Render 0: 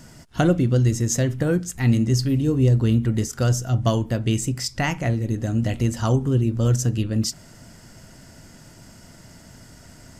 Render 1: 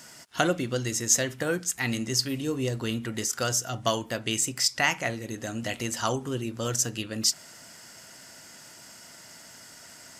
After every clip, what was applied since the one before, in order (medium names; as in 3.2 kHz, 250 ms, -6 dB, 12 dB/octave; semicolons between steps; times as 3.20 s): high-pass 1.2 kHz 6 dB/octave; trim +4 dB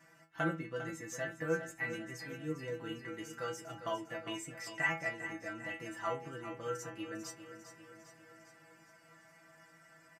resonant high shelf 2.8 kHz -12.5 dB, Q 1.5; inharmonic resonator 160 Hz, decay 0.3 s, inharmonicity 0.002; feedback delay 401 ms, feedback 56%, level -11 dB; trim +1.5 dB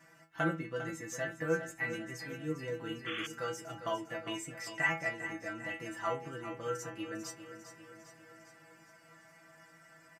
painted sound noise, 3.06–3.27 s, 1.1–3.5 kHz -42 dBFS; trim +2 dB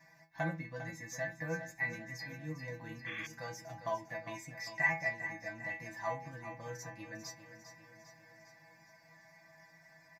static phaser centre 2 kHz, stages 8; trim +1 dB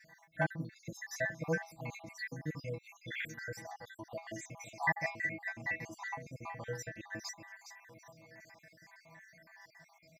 random holes in the spectrogram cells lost 57%; trim +5 dB